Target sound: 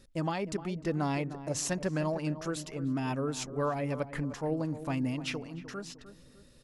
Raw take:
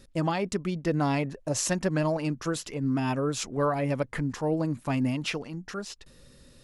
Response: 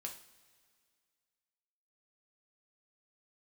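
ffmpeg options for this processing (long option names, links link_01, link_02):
-filter_complex "[0:a]asplit=2[link_01][link_02];[link_02]adelay=304,lowpass=frequency=1200:poles=1,volume=-12dB,asplit=2[link_03][link_04];[link_04]adelay=304,lowpass=frequency=1200:poles=1,volume=0.44,asplit=2[link_05][link_06];[link_06]adelay=304,lowpass=frequency=1200:poles=1,volume=0.44,asplit=2[link_07][link_08];[link_08]adelay=304,lowpass=frequency=1200:poles=1,volume=0.44[link_09];[link_01][link_03][link_05][link_07][link_09]amix=inputs=5:normalize=0,volume=-5dB"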